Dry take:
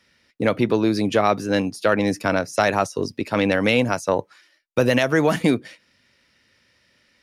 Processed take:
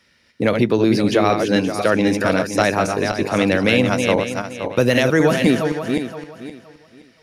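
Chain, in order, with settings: backward echo that repeats 260 ms, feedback 48%, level -5 dB; dynamic bell 970 Hz, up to -4 dB, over -28 dBFS, Q 1.1; trim +3 dB

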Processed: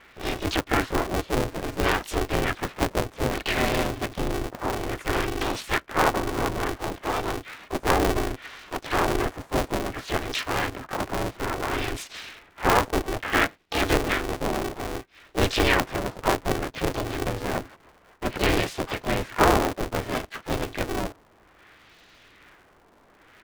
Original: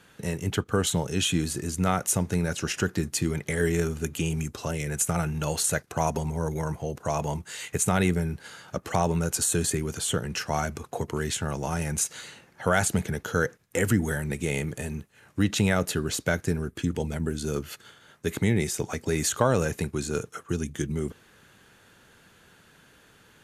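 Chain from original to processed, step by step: LFO low-pass sine 0.6 Hz 780–3100 Hz; harmony voices -4 st -8 dB, +5 st -1 dB, +12 st -9 dB; polarity switched at an audio rate 190 Hz; trim -2.5 dB

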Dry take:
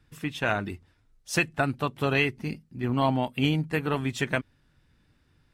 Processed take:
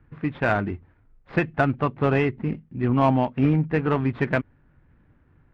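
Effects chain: median filter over 15 samples; low-pass 2.8 kHz 24 dB/octave; in parallel at -8 dB: saturation -27.5 dBFS, distortion -8 dB; on the sum: trim +4 dB

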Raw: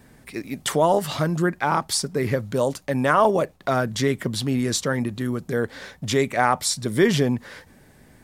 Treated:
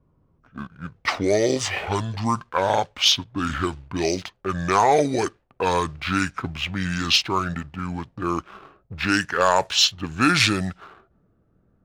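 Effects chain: gliding tape speed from 62% -> 77%; level-controlled noise filter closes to 390 Hz, open at -15 dBFS; tilt shelf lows -9 dB; waveshaping leveller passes 1

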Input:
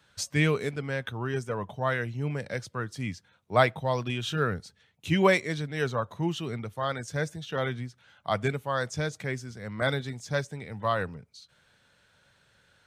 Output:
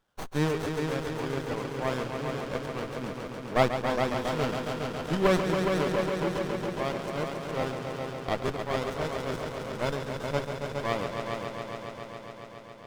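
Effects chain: companding laws mixed up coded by A; bass shelf 200 Hz -11.5 dB; multi-head delay 138 ms, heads all three, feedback 74%, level -9 dB; crackling interface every 0.87 s, samples 512, repeat, from 0.64 s; sliding maximum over 17 samples

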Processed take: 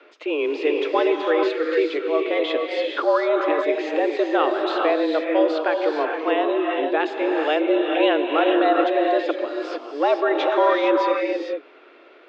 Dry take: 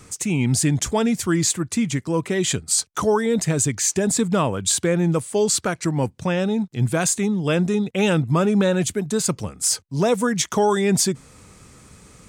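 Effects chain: gated-style reverb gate 480 ms rising, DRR 1 dB; mistuned SSB +150 Hz 190–3400 Hz

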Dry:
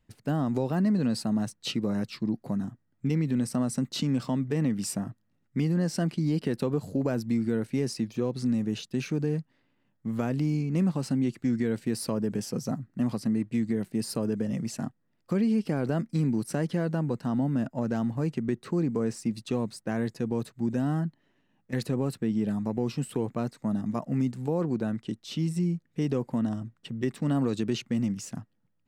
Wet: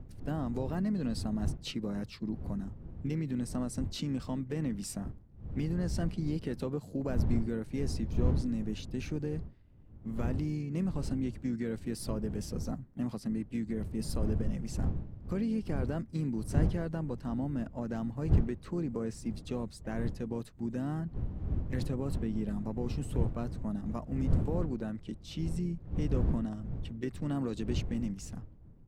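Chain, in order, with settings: wind noise 110 Hz -29 dBFS; harmony voices -4 st -15 dB, +3 st -17 dB; trim -7.5 dB

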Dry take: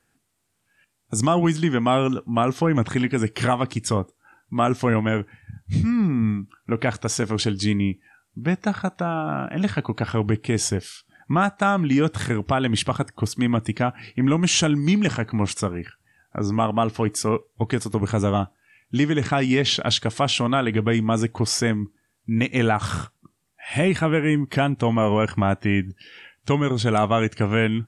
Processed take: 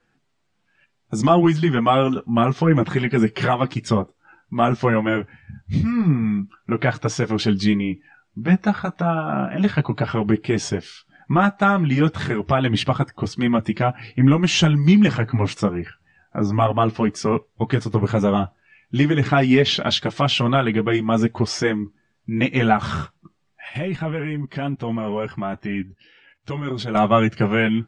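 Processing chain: Bessel low-pass 4.2 kHz, order 4; 23.68–26.95 s: level held to a coarse grid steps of 14 dB; chorus voices 6, 0.26 Hz, delay 10 ms, depth 4.9 ms; trim +6 dB

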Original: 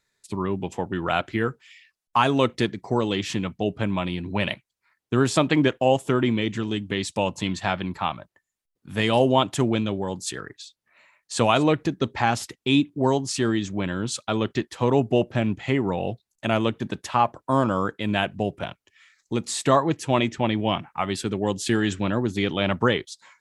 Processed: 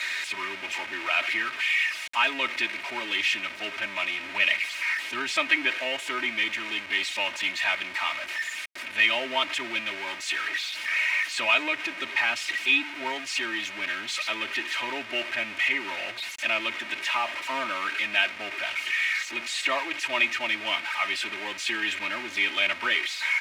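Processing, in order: jump at every zero crossing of -22 dBFS; band-pass filter 2.3 kHz, Q 3.3; comb 3.2 ms, depth 90%; trim +4.5 dB

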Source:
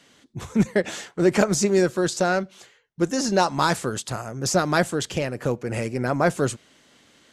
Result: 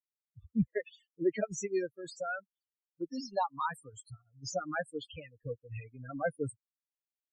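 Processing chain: expander on every frequency bin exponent 3; wow and flutter 29 cents; loudest bins only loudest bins 16; 2.04–3.28 s: dynamic bell 340 Hz, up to -4 dB, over -40 dBFS, Q 1.1; trim -6.5 dB

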